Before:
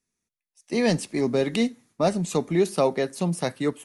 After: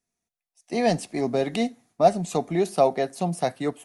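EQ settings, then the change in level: peaking EQ 710 Hz +13.5 dB 0.31 oct; -2.5 dB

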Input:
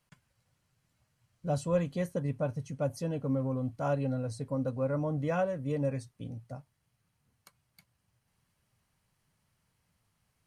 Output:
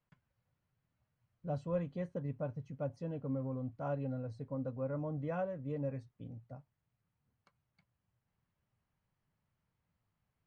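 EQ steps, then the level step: distance through air 110 m; treble shelf 3.5 kHz -11 dB; -6.5 dB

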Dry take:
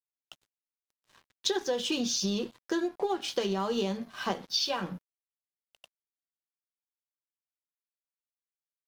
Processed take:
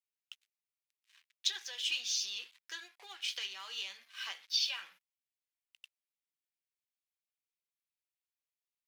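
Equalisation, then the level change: resonant high-pass 2.3 kHz, resonance Q 2; -4.5 dB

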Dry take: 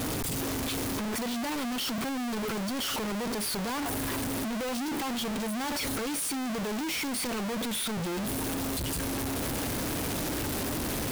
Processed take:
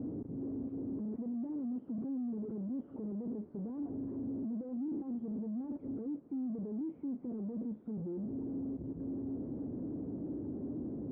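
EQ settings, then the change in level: high-pass 49 Hz; four-pole ladder low-pass 370 Hz, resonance 30%; tilt EQ +4 dB/octave; +8.0 dB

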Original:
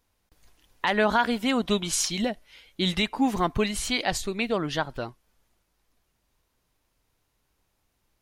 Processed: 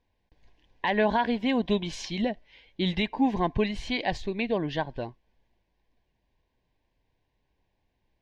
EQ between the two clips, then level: Butterworth band-stop 1.3 kHz, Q 2.7; distance through air 230 m; 0.0 dB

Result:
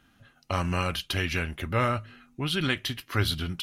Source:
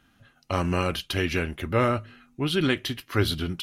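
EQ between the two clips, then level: dynamic bell 360 Hz, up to -8 dB, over -38 dBFS, Q 0.92; 0.0 dB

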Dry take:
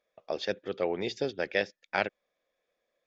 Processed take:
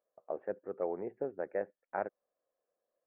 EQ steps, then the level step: Gaussian low-pass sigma 7.7 samples; bass shelf 130 Hz -5 dB; bass shelf 370 Hz -11.5 dB; +1.0 dB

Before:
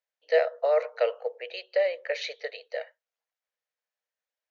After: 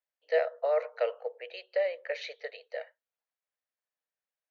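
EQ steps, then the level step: bass shelf 390 Hz -6 dB; treble shelf 3.6 kHz -9.5 dB; -2.0 dB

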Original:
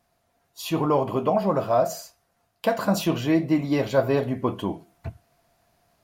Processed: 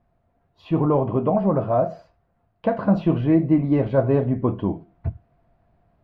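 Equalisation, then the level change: distance through air 370 m; tilt EQ -2.5 dB/octave; treble shelf 8.2 kHz -4.5 dB; 0.0 dB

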